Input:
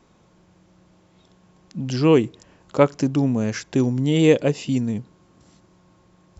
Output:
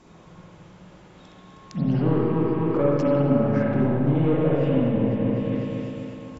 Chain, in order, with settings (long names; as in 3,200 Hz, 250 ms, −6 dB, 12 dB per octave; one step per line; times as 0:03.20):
repeating echo 251 ms, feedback 56%, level −8.5 dB
downward compressor 6 to 1, threshold −26 dBFS, peak gain reduction 15.5 dB
hard clipping −26 dBFS, distortion −13 dB
treble cut that deepens with the level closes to 1,400 Hz, closed at −28.5 dBFS
spring reverb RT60 2 s, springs 42/49/54 ms, chirp 45 ms, DRR −5.5 dB
level +3.5 dB